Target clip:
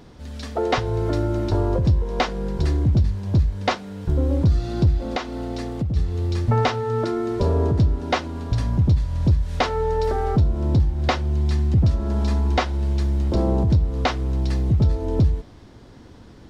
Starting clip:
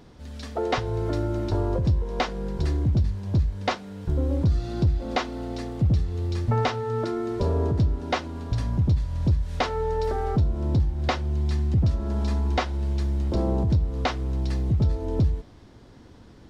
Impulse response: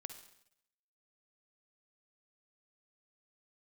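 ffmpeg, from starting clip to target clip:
-filter_complex "[0:a]asplit=3[s0][s1][s2];[s0]afade=t=out:st=5.08:d=0.02[s3];[s1]acompressor=threshold=0.0501:ratio=6,afade=t=in:st=5.08:d=0.02,afade=t=out:st=5.95:d=0.02[s4];[s2]afade=t=in:st=5.95:d=0.02[s5];[s3][s4][s5]amix=inputs=3:normalize=0,volume=1.58"

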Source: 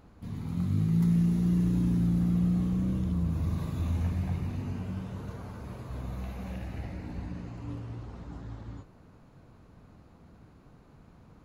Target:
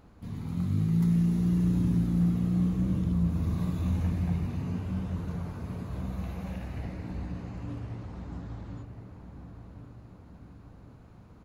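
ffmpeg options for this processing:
-filter_complex "[0:a]asplit=2[s0][s1];[s1]adelay=1067,lowpass=f=2000:p=1,volume=0.398,asplit=2[s2][s3];[s3]adelay=1067,lowpass=f=2000:p=1,volume=0.54,asplit=2[s4][s5];[s5]adelay=1067,lowpass=f=2000:p=1,volume=0.54,asplit=2[s6][s7];[s7]adelay=1067,lowpass=f=2000:p=1,volume=0.54,asplit=2[s8][s9];[s9]adelay=1067,lowpass=f=2000:p=1,volume=0.54,asplit=2[s10][s11];[s11]adelay=1067,lowpass=f=2000:p=1,volume=0.54[s12];[s0][s2][s4][s6][s8][s10][s12]amix=inputs=7:normalize=0"

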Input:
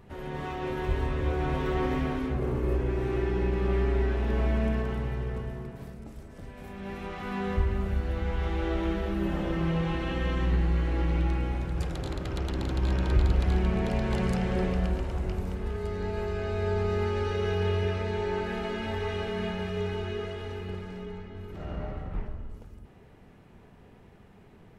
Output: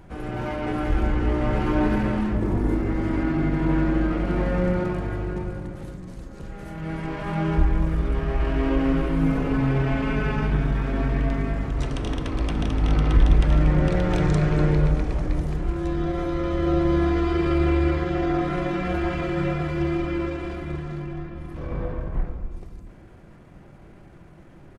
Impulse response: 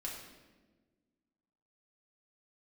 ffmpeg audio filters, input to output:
-filter_complex "[0:a]asetrate=36028,aresample=44100,atempo=1.22405,asplit=2[s0][s1];[1:a]atrim=start_sample=2205[s2];[s1][s2]afir=irnorm=-1:irlink=0,volume=0.531[s3];[s0][s3]amix=inputs=2:normalize=0,volume=1.58"

